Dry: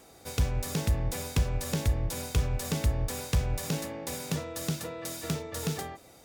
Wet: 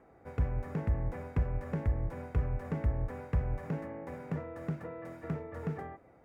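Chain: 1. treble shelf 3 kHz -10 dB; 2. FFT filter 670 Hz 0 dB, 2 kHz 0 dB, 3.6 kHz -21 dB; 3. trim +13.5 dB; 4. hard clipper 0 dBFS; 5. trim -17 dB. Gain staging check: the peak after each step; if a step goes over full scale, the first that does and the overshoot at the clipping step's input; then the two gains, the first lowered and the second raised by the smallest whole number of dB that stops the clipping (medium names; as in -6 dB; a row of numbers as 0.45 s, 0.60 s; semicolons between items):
-17.0 dBFS, -17.0 dBFS, -3.5 dBFS, -3.5 dBFS, -20.5 dBFS; nothing clips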